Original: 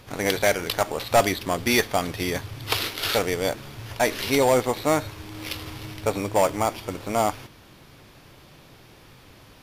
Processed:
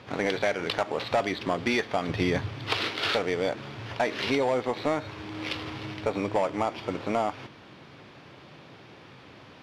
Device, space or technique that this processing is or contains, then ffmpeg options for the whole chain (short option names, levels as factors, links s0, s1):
AM radio: -filter_complex "[0:a]highpass=130,lowpass=3600,acompressor=threshold=0.0631:ratio=5,asoftclip=type=tanh:threshold=0.158,asettb=1/sr,asplit=3[s0][s1][s2];[s0]atrim=end=2.094[s3];[s1]atrim=start=2.09:end=2.51,asetpts=PTS-STARTPTS,afade=t=in:d=0.004:c=qsin,afade=t=out:st=0.416:d=0.004:c=qsin,lowshelf=f=160:g=10.5[s4];[s2]atrim=start=2.506[s5];[s3][s4]acrossfade=d=0.004:c1=hsin:c2=qsin[s6];[s6][s5]acrossfade=d=0.004:c1=qsin:c2=hsin,volume=1.33"